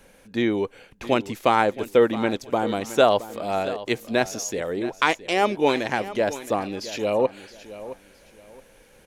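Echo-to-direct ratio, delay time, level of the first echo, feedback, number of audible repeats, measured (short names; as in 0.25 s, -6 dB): -14.5 dB, 0.669 s, -15.0 dB, 26%, 2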